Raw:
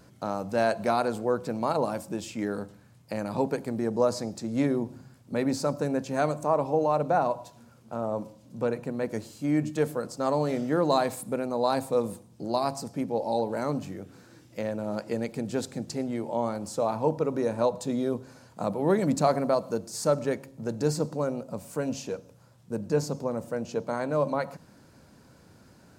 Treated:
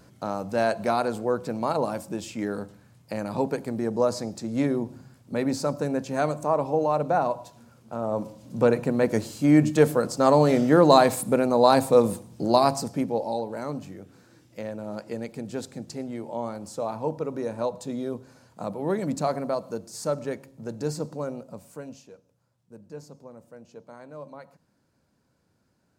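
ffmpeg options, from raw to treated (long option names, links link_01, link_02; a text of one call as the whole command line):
ffmpeg -i in.wav -af "volume=8dB,afade=type=in:start_time=8:duration=0.59:silence=0.446684,afade=type=out:start_time=12.58:duration=0.83:silence=0.281838,afade=type=out:start_time=21.33:duration=0.73:silence=0.251189" out.wav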